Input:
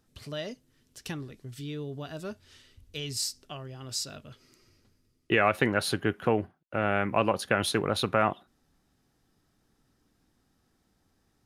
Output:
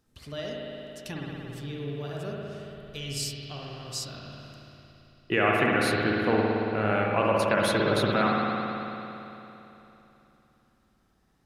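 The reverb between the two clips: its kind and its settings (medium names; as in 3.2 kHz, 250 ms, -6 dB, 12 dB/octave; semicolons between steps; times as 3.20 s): spring tank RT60 3.2 s, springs 56 ms, chirp 50 ms, DRR -3 dB; trim -2 dB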